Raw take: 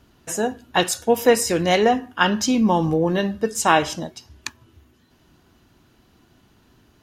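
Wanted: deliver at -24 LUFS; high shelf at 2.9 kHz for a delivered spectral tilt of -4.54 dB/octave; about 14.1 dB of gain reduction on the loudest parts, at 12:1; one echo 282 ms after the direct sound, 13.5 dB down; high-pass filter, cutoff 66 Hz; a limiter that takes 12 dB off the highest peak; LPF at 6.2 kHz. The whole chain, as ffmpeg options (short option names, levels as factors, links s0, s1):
-af "highpass=66,lowpass=6200,highshelf=f=2900:g=-4,acompressor=threshold=0.0631:ratio=12,alimiter=limit=0.0668:level=0:latency=1,aecho=1:1:282:0.211,volume=2.99"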